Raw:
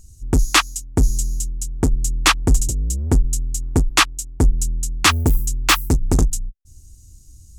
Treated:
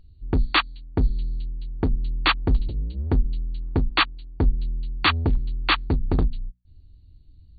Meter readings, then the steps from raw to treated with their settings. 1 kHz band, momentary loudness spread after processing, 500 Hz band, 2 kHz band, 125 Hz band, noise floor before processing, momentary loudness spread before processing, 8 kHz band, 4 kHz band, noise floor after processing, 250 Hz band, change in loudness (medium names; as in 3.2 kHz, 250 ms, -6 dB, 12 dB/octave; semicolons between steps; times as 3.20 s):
-4.5 dB, 10 LU, -4.5 dB, -4.5 dB, -5.0 dB, -46 dBFS, 8 LU, under -40 dB, -5.5 dB, -51 dBFS, -5.0 dB, -5.5 dB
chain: brick-wall FIR low-pass 4.6 kHz; hum notches 60/120/180/240 Hz; trim -4.5 dB